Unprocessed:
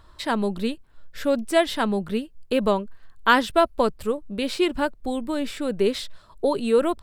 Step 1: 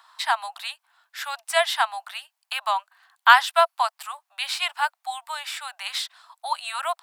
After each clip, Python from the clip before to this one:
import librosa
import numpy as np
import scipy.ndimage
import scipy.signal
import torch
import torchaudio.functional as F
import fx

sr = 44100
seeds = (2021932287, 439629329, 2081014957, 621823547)

y = scipy.signal.sosfilt(scipy.signal.butter(16, 700.0, 'highpass', fs=sr, output='sos'), x)
y = y * 10.0 ** (4.5 / 20.0)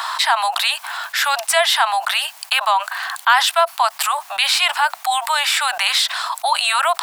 y = fx.env_flatten(x, sr, amount_pct=70)
y = y * 10.0 ** (-1.5 / 20.0)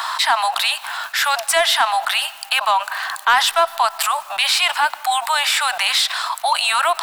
y = fx.leveller(x, sr, passes=1)
y = fx.rev_freeverb(y, sr, rt60_s=2.4, hf_ratio=0.55, predelay_ms=65, drr_db=18.5)
y = y * 10.0 ** (-3.5 / 20.0)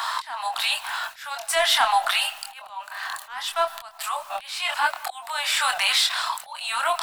y = fx.auto_swell(x, sr, attack_ms=590.0)
y = fx.chorus_voices(y, sr, voices=6, hz=0.88, base_ms=25, depth_ms=1.1, mix_pct=40)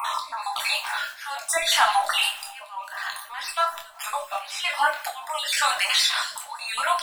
y = fx.spec_dropout(x, sr, seeds[0], share_pct=37)
y = fx.rev_double_slope(y, sr, seeds[1], early_s=0.34, late_s=1.7, knee_db=-26, drr_db=2.0)